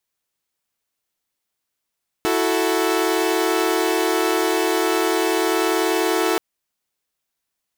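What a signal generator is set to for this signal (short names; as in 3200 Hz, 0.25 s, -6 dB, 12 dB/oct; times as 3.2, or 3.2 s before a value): chord E4/F#4/A4 saw, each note -19.5 dBFS 4.13 s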